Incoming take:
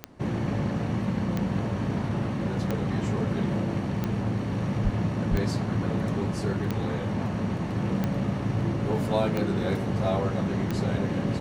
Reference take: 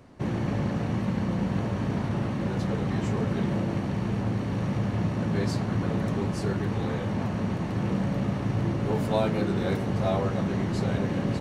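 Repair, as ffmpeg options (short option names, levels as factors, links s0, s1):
-filter_complex "[0:a]adeclick=t=4,asplit=3[s0][s1][s2];[s0]afade=t=out:st=4.83:d=0.02[s3];[s1]highpass=f=140:w=0.5412,highpass=f=140:w=1.3066,afade=t=in:st=4.83:d=0.02,afade=t=out:st=4.95:d=0.02[s4];[s2]afade=t=in:st=4.95:d=0.02[s5];[s3][s4][s5]amix=inputs=3:normalize=0,asplit=3[s6][s7][s8];[s6]afade=t=out:st=5.3:d=0.02[s9];[s7]highpass=f=140:w=0.5412,highpass=f=140:w=1.3066,afade=t=in:st=5.3:d=0.02,afade=t=out:st=5.42:d=0.02[s10];[s8]afade=t=in:st=5.42:d=0.02[s11];[s9][s10][s11]amix=inputs=3:normalize=0"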